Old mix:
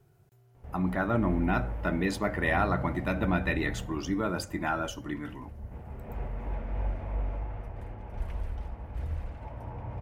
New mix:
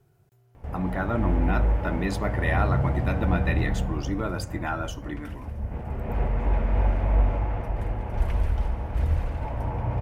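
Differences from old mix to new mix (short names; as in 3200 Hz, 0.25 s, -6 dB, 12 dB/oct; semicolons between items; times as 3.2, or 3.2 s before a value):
background +8.5 dB; reverb: on, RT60 2.1 s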